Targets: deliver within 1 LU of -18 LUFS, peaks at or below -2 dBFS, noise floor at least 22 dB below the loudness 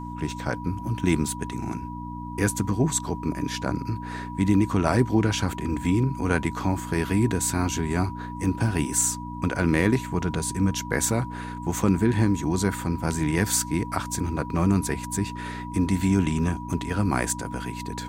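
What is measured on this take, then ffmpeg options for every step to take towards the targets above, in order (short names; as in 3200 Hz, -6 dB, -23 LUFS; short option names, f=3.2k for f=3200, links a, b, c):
hum 60 Hz; harmonics up to 300 Hz; hum level -33 dBFS; steady tone 970 Hz; tone level -37 dBFS; loudness -25.5 LUFS; peak -6.0 dBFS; loudness target -18.0 LUFS
-> -af "bandreject=f=60:t=h:w=4,bandreject=f=120:t=h:w=4,bandreject=f=180:t=h:w=4,bandreject=f=240:t=h:w=4,bandreject=f=300:t=h:w=4"
-af "bandreject=f=970:w=30"
-af "volume=7.5dB,alimiter=limit=-2dB:level=0:latency=1"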